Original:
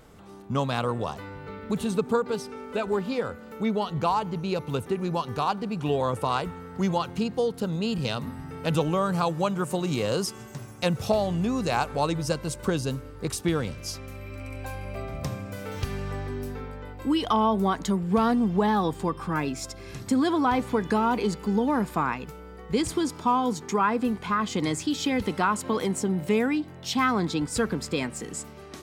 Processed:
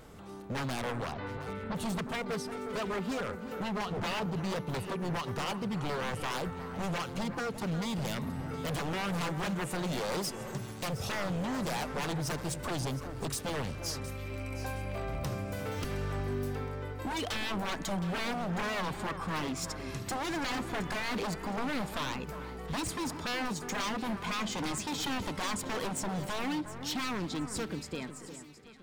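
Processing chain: ending faded out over 2.64 s; 3.86–4.26 tilt -2 dB/oct; in parallel at -1.5 dB: compressor, threshold -35 dBFS, peak gain reduction 16.5 dB; on the sum: wavefolder -24 dBFS; 1.12–1.75 LPF 4400 Hz 24 dB/oct; on a send: echo with dull and thin repeats by turns 0.358 s, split 1900 Hz, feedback 60%, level -10 dB; on the sum: gain -5 dB

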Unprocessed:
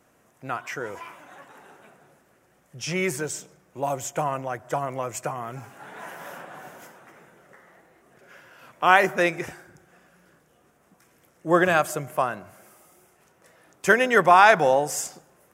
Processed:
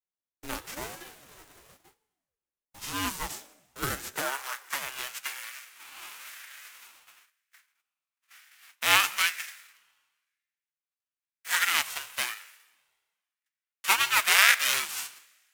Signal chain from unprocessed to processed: spectral whitening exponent 0.3; high-pass sweep 100 Hz -> 1900 Hz, 1.07–5.03; gate -49 dBFS, range -35 dB; Schroeder reverb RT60 1.4 s, combs from 29 ms, DRR 19 dB; ring modulator with a swept carrier 400 Hz, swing 65%, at 1 Hz; gain -3.5 dB

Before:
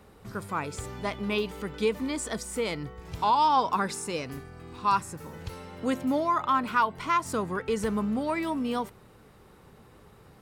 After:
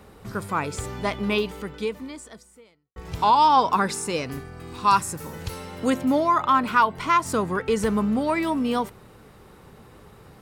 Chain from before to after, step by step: 1.3–2.96 fade out quadratic; 4.6–5.9 high shelf 4800 Hz +7.5 dB; gain +5.5 dB

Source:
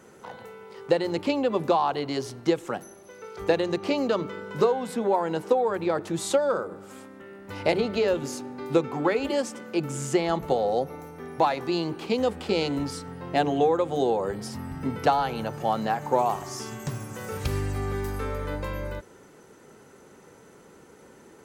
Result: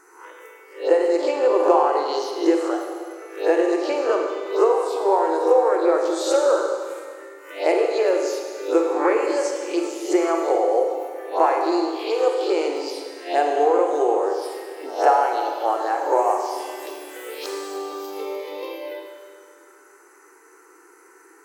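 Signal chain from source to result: spectral swells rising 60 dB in 0.43 s; envelope phaser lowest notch 540 Hz, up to 3800 Hz, full sweep at -20.5 dBFS; brick-wall FIR high-pass 300 Hz; Schroeder reverb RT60 1.9 s, combs from 33 ms, DRR 2 dB; gain +3 dB

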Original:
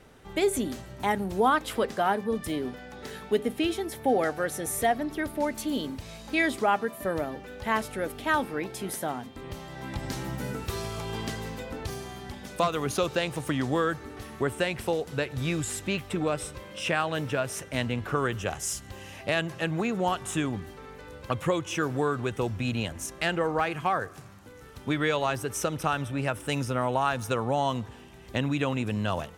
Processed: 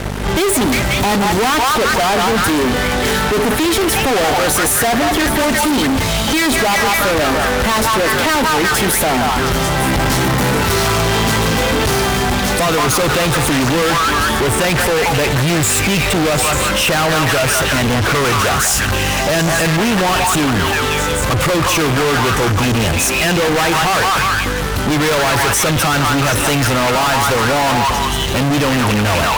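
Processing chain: hum 50 Hz, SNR 20 dB; delay with a stepping band-pass 0.179 s, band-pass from 1100 Hz, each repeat 0.7 oct, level -1 dB; fuzz box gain 47 dB, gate -51 dBFS

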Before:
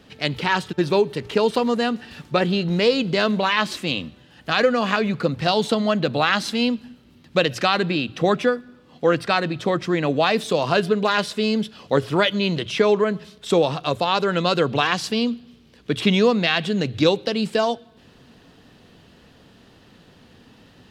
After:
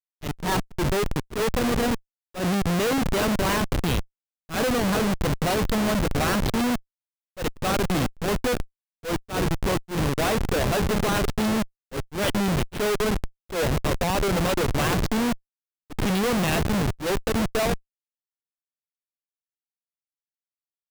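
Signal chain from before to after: frequency-shifting echo 0.321 s, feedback 41%, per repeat -32 Hz, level -15 dB; Schmitt trigger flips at -21.5 dBFS; auto swell 0.116 s

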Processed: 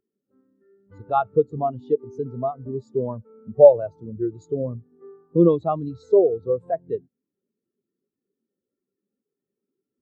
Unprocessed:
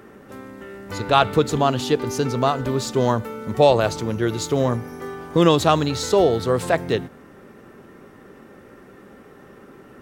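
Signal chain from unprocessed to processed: in parallel at +2.5 dB: compressor, threshold -26 dBFS, peak gain reduction 15.5 dB; on the sum: spectral expander 2.5:1; gain -1 dB

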